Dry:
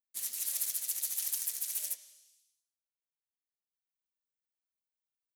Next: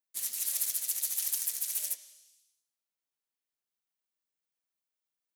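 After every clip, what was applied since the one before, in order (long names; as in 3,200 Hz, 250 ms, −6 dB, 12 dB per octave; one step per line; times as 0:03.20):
high-pass filter 120 Hz
level +2.5 dB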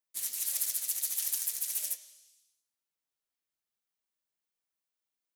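flanger 1.8 Hz, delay 2.4 ms, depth 9.9 ms, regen +68%
level +4 dB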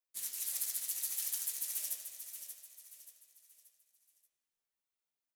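double-tracking delay 16 ms −11 dB
repeating echo 581 ms, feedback 39%, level −9 dB
spring reverb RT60 1.4 s, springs 31/40 ms, chirp 45 ms, DRR 6.5 dB
level −5.5 dB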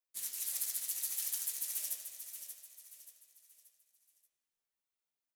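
no processing that can be heard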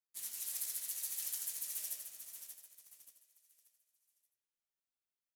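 in parallel at −5.5 dB: bit reduction 8 bits
on the sum: single-tap delay 85 ms −8 dB
level −7.5 dB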